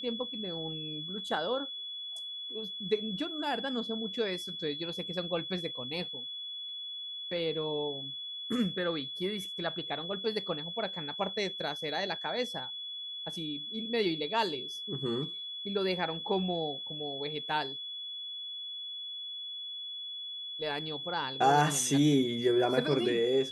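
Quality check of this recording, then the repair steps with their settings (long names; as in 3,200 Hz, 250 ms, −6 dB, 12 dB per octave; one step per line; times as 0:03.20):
whistle 3,400 Hz −38 dBFS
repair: notch filter 3,400 Hz, Q 30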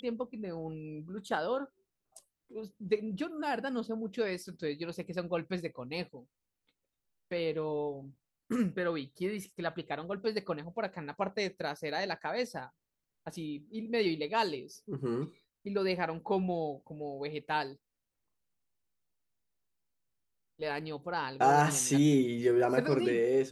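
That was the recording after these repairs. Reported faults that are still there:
none of them is left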